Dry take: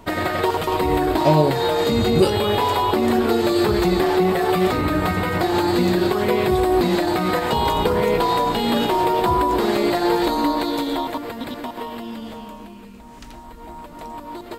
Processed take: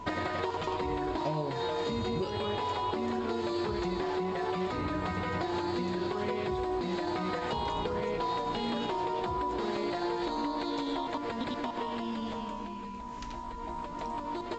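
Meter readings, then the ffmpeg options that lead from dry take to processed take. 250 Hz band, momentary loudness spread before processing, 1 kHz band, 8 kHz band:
-13.5 dB, 15 LU, -12.0 dB, -17.0 dB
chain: -af "acompressor=threshold=0.0398:ratio=6,aeval=exprs='val(0)+0.0112*sin(2*PI*990*n/s)':c=same,volume=0.75" -ar 16000 -c:a pcm_alaw

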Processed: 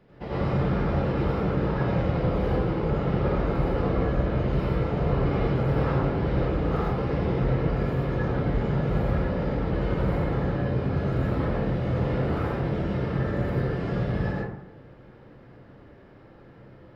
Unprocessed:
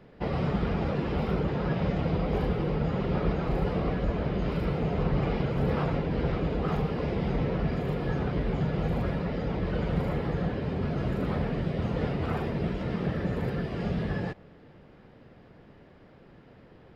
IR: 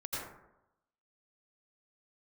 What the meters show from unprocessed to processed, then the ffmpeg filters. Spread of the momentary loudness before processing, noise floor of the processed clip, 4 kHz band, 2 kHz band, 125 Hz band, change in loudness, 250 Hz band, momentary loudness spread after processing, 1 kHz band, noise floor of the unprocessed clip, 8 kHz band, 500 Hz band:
3 LU, -50 dBFS, -0.5 dB, +2.5 dB, +4.0 dB, +3.5 dB, +2.0 dB, 3 LU, +3.5 dB, -54 dBFS, no reading, +3.5 dB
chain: -filter_complex "[1:a]atrim=start_sample=2205[s0];[0:a][s0]afir=irnorm=-1:irlink=0"

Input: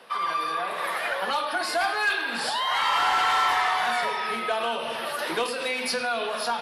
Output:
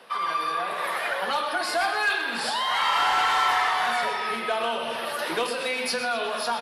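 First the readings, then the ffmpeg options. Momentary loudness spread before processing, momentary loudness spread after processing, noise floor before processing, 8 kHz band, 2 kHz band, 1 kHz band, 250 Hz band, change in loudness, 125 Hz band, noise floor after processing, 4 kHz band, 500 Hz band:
7 LU, 7 LU, -32 dBFS, +0.5 dB, +0.5 dB, +0.5 dB, +0.5 dB, +0.5 dB, no reading, -31 dBFS, +0.5 dB, +0.5 dB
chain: -af "aecho=1:1:125|250|375|500|625:0.266|0.128|0.0613|0.0294|0.0141"

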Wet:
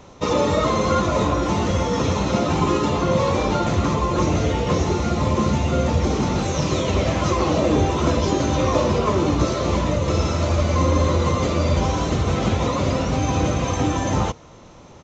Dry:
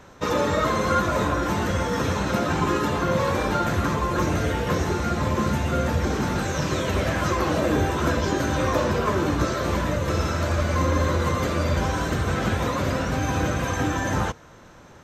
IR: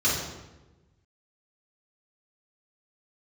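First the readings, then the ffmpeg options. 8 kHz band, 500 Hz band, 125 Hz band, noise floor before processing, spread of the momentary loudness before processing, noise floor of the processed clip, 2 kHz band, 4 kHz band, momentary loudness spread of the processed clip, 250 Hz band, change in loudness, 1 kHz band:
+3.0 dB, +4.0 dB, +4.0 dB, -47 dBFS, 3 LU, -44 dBFS, -3.0 dB, +3.5 dB, 3 LU, +4.0 dB, +3.0 dB, +2.0 dB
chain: -af "aresample=16000,aresample=44100,equalizer=f=1600:w=3.5:g=-13,volume=1.58"

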